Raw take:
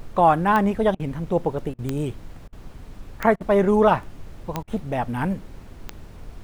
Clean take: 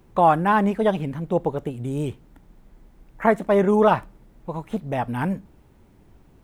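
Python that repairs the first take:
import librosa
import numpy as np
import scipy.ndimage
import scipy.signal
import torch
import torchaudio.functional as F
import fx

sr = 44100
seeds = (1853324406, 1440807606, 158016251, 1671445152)

y = fx.fix_declick_ar(x, sr, threshold=10.0)
y = fx.fix_interpolate(y, sr, at_s=(0.95, 1.74, 2.48, 3.36, 4.63), length_ms=45.0)
y = fx.noise_reduce(y, sr, print_start_s=2.38, print_end_s=2.88, reduce_db=12.0)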